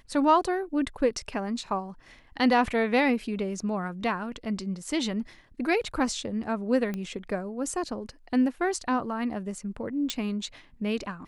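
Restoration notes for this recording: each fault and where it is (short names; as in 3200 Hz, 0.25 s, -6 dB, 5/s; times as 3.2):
6.94 pop -20 dBFS
10.1 pop -13 dBFS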